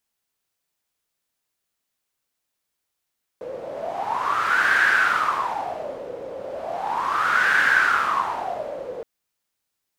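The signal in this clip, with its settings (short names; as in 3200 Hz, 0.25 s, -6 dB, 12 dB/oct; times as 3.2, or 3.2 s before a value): wind-like swept noise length 5.62 s, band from 500 Hz, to 1600 Hz, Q 8.8, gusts 2, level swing 15 dB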